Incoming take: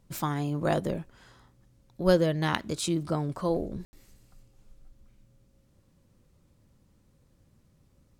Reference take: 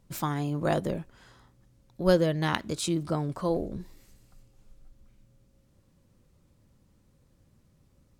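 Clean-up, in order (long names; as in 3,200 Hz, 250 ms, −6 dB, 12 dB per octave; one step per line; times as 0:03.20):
ambience match 0:03.85–0:03.93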